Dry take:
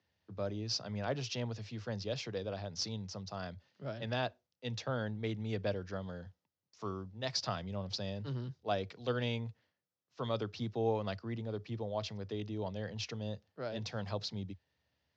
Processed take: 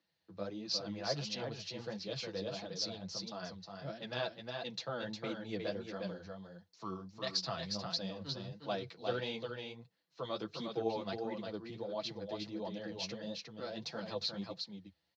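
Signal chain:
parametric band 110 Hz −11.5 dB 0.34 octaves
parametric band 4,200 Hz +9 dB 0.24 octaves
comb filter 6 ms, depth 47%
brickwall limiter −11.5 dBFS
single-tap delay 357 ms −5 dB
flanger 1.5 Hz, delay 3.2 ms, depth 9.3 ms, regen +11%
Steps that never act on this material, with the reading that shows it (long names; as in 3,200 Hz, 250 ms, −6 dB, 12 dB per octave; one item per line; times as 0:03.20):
brickwall limiter −11.5 dBFS: peak of its input −18.0 dBFS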